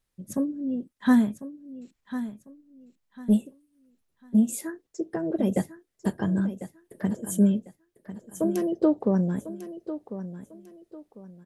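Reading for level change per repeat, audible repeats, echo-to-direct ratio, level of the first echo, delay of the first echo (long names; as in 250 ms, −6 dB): −11.0 dB, 3, −12.0 dB, −12.5 dB, 1,048 ms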